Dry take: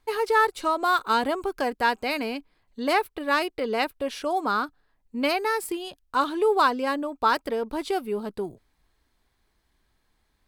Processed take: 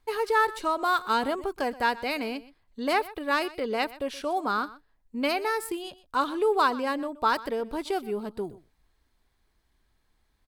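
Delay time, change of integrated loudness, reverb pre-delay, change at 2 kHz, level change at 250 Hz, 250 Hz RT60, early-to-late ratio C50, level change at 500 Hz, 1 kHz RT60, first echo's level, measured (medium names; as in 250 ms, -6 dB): 124 ms, -2.5 dB, no reverb, -2.5 dB, -2.0 dB, no reverb, no reverb, -2.5 dB, no reverb, -18.5 dB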